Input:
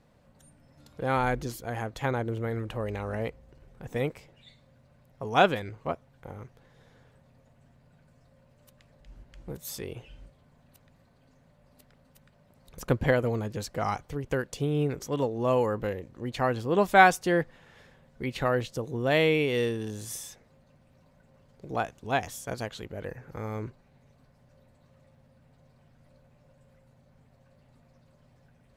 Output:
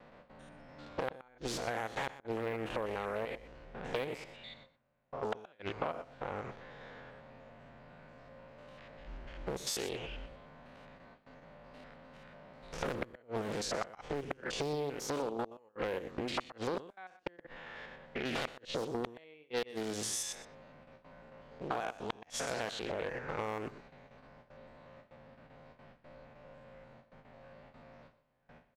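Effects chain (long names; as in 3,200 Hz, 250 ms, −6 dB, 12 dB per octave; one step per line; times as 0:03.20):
spectrum averaged block by block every 100 ms
low-shelf EQ 410 Hz −7.5 dB
gate with flip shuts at −22 dBFS, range −41 dB
low-pass that shuts in the quiet parts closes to 2,600 Hz, open at −34 dBFS
parametric band 95 Hz −10.5 dB 1.3 octaves
in parallel at −1 dB: speech leveller within 3 dB 0.5 s
on the sum: noise gate with hold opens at −54 dBFS
downward compressor 6 to 1, threshold −41 dBFS, peak gain reduction 16 dB
on a send: single-tap delay 123 ms −15.5 dB
on the sum: highs frequency-modulated by the lows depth 0.64 ms
level +7.5 dB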